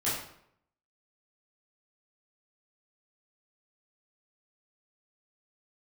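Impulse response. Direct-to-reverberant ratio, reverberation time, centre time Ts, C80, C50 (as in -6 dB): -10.5 dB, 0.70 s, 52 ms, 6.0 dB, 2.5 dB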